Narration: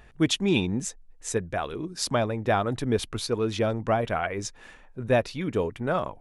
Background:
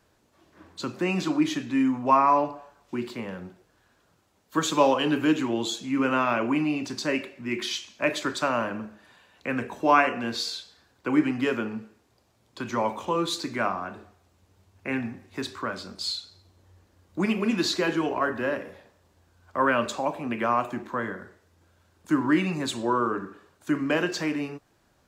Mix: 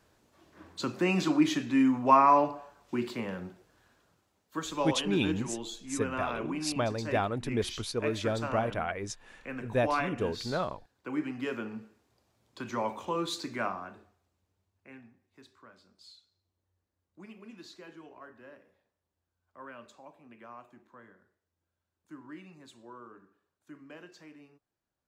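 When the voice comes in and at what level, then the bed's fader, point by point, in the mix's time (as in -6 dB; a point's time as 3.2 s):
4.65 s, -5.5 dB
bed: 3.87 s -1 dB
4.64 s -11 dB
11.19 s -11 dB
11.85 s -6 dB
13.64 s -6 dB
15.12 s -24 dB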